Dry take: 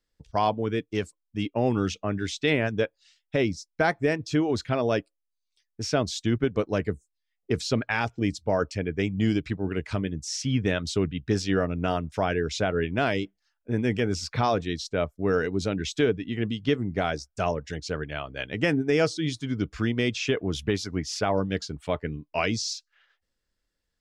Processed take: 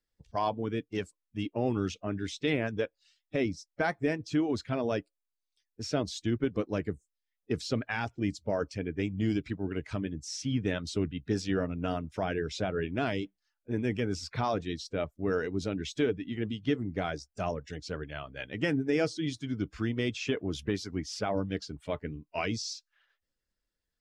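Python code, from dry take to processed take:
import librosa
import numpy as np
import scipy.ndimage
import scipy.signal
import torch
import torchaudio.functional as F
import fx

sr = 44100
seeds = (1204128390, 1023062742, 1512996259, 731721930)

y = fx.spec_quant(x, sr, step_db=15)
y = fx.dynamic_eq(y, sr, hz=290.0, q=2.3, threshold_db=-37.0, ratio=4.0, max_db=3)
y = y * librosa.db_to_amplitude(-6.0)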